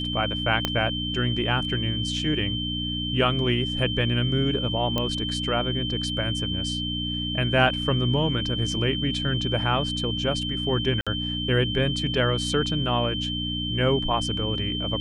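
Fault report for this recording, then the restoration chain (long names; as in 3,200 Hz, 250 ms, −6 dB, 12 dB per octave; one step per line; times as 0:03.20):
mains hum 60 Hz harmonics 5 −31 dBFS
whistle 3,100 Hz −29 dBFS
0:00.65: click −8 dBFS
0:04.98: click −11 dBFS
0:11.01–0:11.07: drop-out 56 ms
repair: click removal
hum removal 60 Hz, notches 5
notch filter 3,100 Hz, Q 30
repair the gap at 0:11.01, 56 ms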